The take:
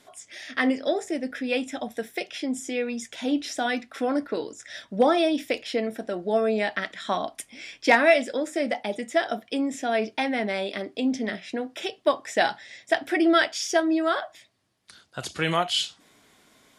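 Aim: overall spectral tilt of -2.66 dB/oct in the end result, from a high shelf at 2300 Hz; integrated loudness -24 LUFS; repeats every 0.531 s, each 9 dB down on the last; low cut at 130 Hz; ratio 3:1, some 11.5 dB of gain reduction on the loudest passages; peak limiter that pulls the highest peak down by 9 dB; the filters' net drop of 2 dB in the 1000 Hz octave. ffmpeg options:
-af "highpass=130,equalizer=f=1k:t=o:g=-4,highshelf=f=2.3k:g=4,acompressor=threshold=-30dB:ratio=3,alimiter=limit=-23dB:level=0:latency=1,aecho=1:1:531|1062|1593|2124:0.355|0.124|0.0435|0.0152,volume=10dB"

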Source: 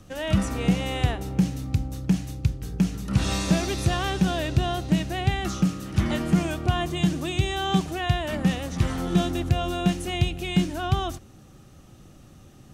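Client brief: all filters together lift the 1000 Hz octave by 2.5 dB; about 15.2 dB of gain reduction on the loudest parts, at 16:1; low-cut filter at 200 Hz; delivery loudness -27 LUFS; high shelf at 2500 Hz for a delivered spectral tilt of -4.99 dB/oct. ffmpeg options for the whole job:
-af "highpass=200,equalizer=f=1k:t=o:g=4.5,highshelf=f=2.5k:g=-3.5,acompressor=threshold=-34dB:ratio=16,volume=11.5dB"

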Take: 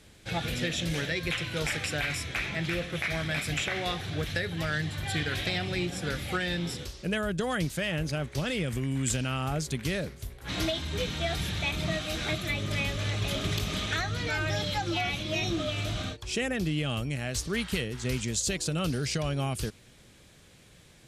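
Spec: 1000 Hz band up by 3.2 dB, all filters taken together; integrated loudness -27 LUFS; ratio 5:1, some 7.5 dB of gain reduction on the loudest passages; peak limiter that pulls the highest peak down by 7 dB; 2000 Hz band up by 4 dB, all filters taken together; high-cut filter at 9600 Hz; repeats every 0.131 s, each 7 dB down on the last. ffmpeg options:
-af "lowpass=9.6k,equalizer=f=1k:t=o:g=3.5,equalizer=f=2k:t=o:g=4,acompressor=threshold=-32dB:ratio=5,alimiter=level_in=2.5dB:limit=-24dB:level=0:latency=1,volume=-2.5dB,aecho=1:1:131|262|393|524|655:0.447|0.201|0.0905|0.0407|0.0183,volume=8dB"

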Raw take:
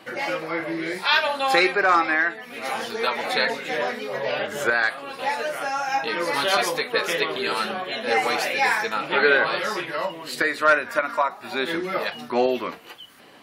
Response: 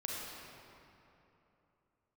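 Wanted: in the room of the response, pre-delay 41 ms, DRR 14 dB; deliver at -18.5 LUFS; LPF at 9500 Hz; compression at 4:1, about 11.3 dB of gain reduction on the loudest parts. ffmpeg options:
-filter_complex "[0:a]lowpass=9.5k,acompressor=threshold=-27dB:ratio=4,asplit=2[a][b];[1:a]atrim=start_sample=2205,adelay=41[c];[b][c]afir=irnorm=-1:irlink=0,volume=-16dB[d];[a][d]amix=inputs=2:normalize=0,volume=11dB"

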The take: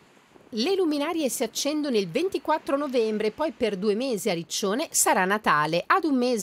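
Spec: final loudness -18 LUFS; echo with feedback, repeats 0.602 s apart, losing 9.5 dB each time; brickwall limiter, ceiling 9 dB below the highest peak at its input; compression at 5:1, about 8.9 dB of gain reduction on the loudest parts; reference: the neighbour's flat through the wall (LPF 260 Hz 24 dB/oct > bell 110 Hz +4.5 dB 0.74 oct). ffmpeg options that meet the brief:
-af "acompressor=threshold=-26dB:ratio=5,alimiter=limit=-21.5dB:level=0:latency=1,lowpass=f=260:w=0.5412,lowpass=f=260:w=1.3066,equalizer=f=110:t=o:w=0.74:g=4.5,aecho=1:1:602|1204|1806|2408:0.335|0.111|0.0365|0.012,volume=20.5dB"

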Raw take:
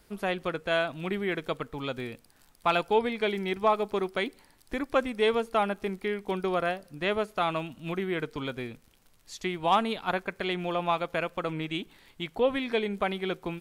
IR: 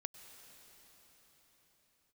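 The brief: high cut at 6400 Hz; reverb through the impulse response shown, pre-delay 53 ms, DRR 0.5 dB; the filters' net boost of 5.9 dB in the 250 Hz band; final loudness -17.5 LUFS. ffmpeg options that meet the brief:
-filter_complex "[0:a]lowpass=6.4k,equalizer=f=250:t=o:g=8,asplit=2[a][b];[1:a]atrim=start_sample=2205,adelay=53[c];[b][c]afir=irnorm=-1:irlink=0,volume=3dB[d];[a][d]amix=inputs=2:normalize=0,volume=7.5dB"

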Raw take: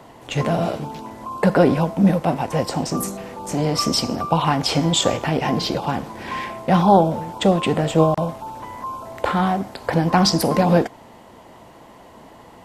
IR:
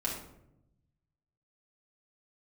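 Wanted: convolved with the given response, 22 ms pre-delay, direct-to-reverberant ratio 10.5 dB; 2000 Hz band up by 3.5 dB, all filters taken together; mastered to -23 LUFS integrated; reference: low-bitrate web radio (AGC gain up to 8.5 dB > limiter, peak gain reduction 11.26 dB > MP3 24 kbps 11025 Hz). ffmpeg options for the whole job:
-filter_complex "[0:a]equalizer=f=2k:t=o:g=4.5,asplit=2[a][b];[1:a]atrim=start_sample=2205,adelay=22[c];[b][c]afir=irnorm=-1:irlink=0,volume=-15dB[d];[a][d]amix=inputs=2:normalize=0,dynaudnorm=m=8.5dB,alimiter=limit=-12.5dB:level=0:latency=1,volume=1.5dB" -ar 11025 -c:a libmp3lame -b:a 24k

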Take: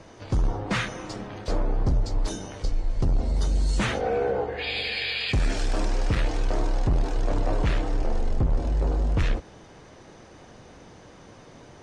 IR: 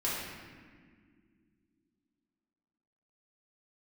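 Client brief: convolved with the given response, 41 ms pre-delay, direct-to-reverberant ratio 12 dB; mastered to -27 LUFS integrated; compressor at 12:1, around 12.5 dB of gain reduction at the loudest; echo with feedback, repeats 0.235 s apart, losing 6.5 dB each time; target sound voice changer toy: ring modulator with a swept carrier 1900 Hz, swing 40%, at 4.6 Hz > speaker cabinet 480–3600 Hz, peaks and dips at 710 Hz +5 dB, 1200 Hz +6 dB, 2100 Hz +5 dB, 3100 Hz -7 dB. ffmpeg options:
-filter_complex "[0:a]acompressor=threshold=-32dB:ratio=12,aecho=1:1:235|470|705|940|1175|1410:0.473|0.222|0.105|0.0491|0.0231|0.0109,asplit=2[a][b];[1:a]atrim=start_sample=2205,adelay=41[c];[b][c]afir=irnorm=-1:irlink=0,volume=-19dB[d];[a][d]amix=inputs=2:normalize=0,aeval=exprs='val(0)*sin(2*PI*1900*n/s+1900*0.4/4.6*sin(2*PI*4.6*n/s))':c=same,highpass=480,equalizer=f=710:t=q:w=4:g=5,equalizer=f=1.2k:t=q:w=4:g=6,equalizer=f=2.1k:t=q:w=4:g=5,equalizer=f=3.1k:t=q:w=4:g=-7,lowpass=f=3.6k:w=0.5412,lowpass=f=3.6k:w=1.3066,volume=5dB"

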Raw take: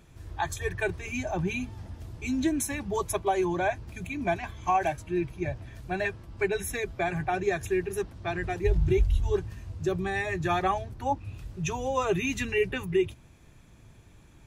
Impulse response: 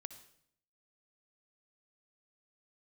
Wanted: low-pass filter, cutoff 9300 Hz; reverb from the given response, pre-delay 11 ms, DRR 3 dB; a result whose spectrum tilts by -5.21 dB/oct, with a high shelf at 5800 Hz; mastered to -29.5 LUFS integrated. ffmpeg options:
-filter_complex "[0:a]lowpass=9.3k,highshelf=f=5.8k:g=6.5,asplit=2[a][b];[1:a]atrim=start_sample=2205,adelay=11[c];[b][c]afir=irnorm=-1:irlink=0,volume=1.5dB[d];[a][d]amix=inputs=2:normalize=0,volume=-1.5dB"

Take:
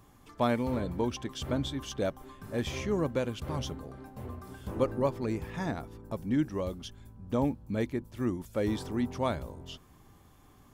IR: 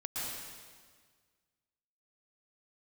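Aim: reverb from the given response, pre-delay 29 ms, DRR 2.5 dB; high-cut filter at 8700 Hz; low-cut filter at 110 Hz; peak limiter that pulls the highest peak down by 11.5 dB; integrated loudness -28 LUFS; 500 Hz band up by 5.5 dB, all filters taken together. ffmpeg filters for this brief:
-filter_complex "[0:a]highpass=110,lowpass=8.7k,equalizer=f=500:t=o:g=6.5,alimiter=limit=-21dB:level=0:latency=1,asplit=2[a][b];[1:a]atrim=start_sample=2205,adelay=29[c];[b][c]afir=irnorm=-1:irlink=0,volume=-5.5dB[d];[a][d]amix=inputs=2:normalize=0,volume=3.5dB"

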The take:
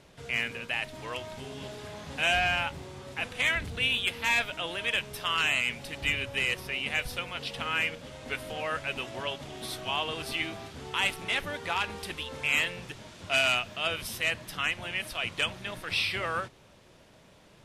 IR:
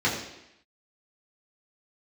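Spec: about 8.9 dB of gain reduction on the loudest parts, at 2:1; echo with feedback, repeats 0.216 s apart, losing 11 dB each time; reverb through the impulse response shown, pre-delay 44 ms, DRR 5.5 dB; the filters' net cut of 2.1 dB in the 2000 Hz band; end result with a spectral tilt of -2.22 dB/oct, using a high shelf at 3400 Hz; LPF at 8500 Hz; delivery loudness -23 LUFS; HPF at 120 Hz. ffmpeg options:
-filter_complex "[0:a]highpass=120,lowpass=8.5k,equalizer=f=2k:t=o:g=-6,highshelf=f=3.4k:g=7.5,acompressor=threshold=-39dB:ratio=2,aecho=1:1:216|432|648:0.282|0.0789|0.0221,asplit=2[a][b];[1:a]atrim=start_sample=2205,adelay=44[c];[b][c]afir=irnorm=-1:irlink=0,volume=-19.5dB[d];[a][d]amix=inputs=2:normalize=0,volume=13dB"

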